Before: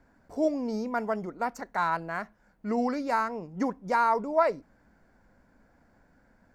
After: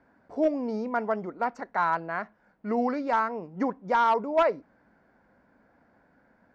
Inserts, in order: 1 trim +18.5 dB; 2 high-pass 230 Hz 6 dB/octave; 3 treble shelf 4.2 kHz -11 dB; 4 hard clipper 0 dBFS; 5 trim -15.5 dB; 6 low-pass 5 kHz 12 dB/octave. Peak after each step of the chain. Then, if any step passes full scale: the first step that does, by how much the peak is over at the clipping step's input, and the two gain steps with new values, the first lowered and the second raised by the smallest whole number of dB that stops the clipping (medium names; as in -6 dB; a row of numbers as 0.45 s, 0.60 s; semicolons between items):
+7.0 dBFS, +6.5 dBFS, +6.0 dBFS, 0.0 dBFS, -15.5 dBFS, -15.0 dBFS; step 1, 6.0 dB; step 1 +12.5 dB, step 5 -9.5 dB